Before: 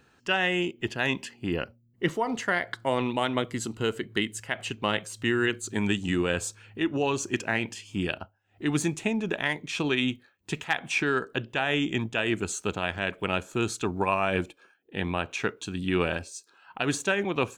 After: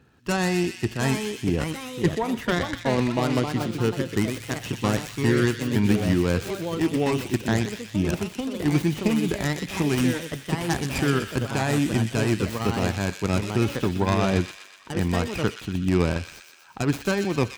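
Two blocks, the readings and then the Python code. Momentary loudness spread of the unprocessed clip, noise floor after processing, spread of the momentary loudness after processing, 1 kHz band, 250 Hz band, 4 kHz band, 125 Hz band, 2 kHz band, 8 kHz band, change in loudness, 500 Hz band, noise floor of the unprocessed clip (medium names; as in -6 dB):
7 LU, -46 dBFS, 6 LU, +1.0 dB, +6.5 dB, 0.0 dB, +10.0 dB, -2.0 dB, +1.5 dB, +3.5 dB, +3.5 dB, -64 dBFS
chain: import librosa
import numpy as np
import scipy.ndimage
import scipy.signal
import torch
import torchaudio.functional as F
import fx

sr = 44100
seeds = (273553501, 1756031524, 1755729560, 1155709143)

p1 = fx.tracing_dist(x, sr, depth_ms=0.38)
p2 = fx.high_shelf(p1, sr, hz=7000.0, db=-8.5)
p3 = fx.dmg_crackle(p2, sr, seeds[0], per_s=190.0, level_db=-57.0)
p4 = fx.echo_pitch(p3, sr, ms=771, semitones=3, count=2, db_per_echo=-6.0)
p5 = scipy.signal.sosfilt(scipy.signal.butter(2, 46.0, 'highpass', fs=sr, output='sos'), p4)
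p6 = fx.low_shelf(p5, sr, hz=300.0, db=10.5)
p7 = p6 + fx.echo_wet_highpass(p6, sr, ms=123, feedback_pct=59, hz=2300.0, wet_db=-4.5, dry=0)
y = p7 * 10.0 ** (-1.5 / 20.0)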